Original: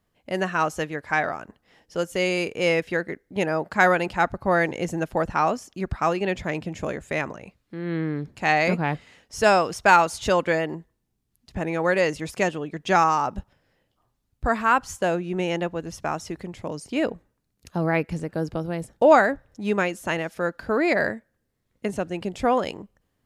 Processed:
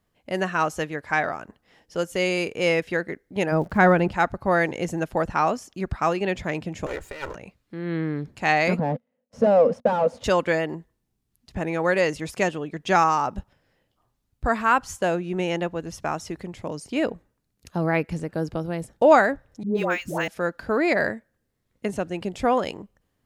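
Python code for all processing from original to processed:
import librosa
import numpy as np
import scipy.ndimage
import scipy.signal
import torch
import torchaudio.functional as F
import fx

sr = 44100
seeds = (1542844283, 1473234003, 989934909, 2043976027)

y = fx.riaa(x, sr, side='playback', at=(3.51, 4.11), fade=0.02)
y = fx.dmg_crackle(y, sr, seeds[0], per_s=140.0, level_db=-41.0, at=(3.51, 4.11), fade=0.02)
y = fx.chain(y, sr, fx.lower_of_two(delay_ms=2.1),
    fx.over_compress(threshold_db=-31.0, ratio=-0.5), at=(6.86, 7.35))
y = fx.chain(y, sr, fx.leveller(passes=5),
    fx.double_bandpass(hz=350.0, octaves=1.1), at=(8.79, 10.24))
y = fx.chain(y, sr, fx.dispersion(late='highs', ms=124.0, hz=670.0),
    fx.resample_linear(factor=2), at=(19.63, 20.28))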